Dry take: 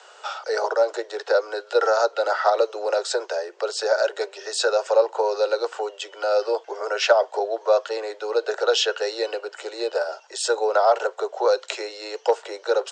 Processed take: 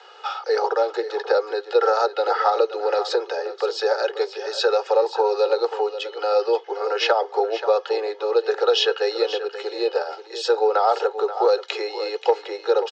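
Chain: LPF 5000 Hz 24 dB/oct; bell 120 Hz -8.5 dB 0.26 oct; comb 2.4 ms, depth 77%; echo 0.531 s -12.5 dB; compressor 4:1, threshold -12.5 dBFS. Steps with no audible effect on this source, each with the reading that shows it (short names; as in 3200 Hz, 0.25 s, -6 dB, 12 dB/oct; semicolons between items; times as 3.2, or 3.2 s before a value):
bell 120 Hz: input band starts at 300 Hz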